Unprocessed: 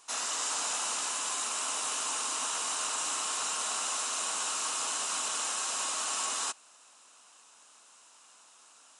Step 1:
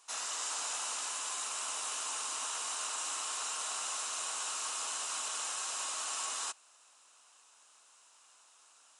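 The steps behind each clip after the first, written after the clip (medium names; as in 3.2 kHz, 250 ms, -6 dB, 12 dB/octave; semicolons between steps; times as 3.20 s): high-pass 110 Hz; peaking EQ 150 Hz -11 dB 2 oct; trim -4.5 dB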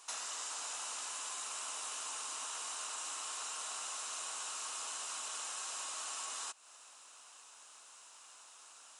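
compression 5:1, threshold -46 dBFS, peak gain reduction 11 dB; trim +5.5 dB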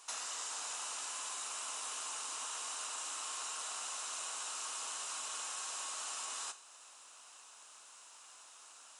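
Schroeder reverb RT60 0.68 s, combs from 31 ms, DRR 11.5 dB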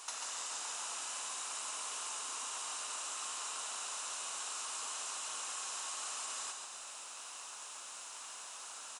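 compression 6:1, threshold -48 dBFS, peak gain reduction 10 dB; frequency-shifting echo 140 ms, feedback 48%, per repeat -32 Hz, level -5 dB; trim +7.5 dB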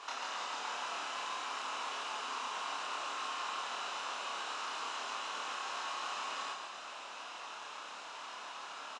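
distance through air 240 m; doubling 28 ms -2 dB; trim +6.5 dB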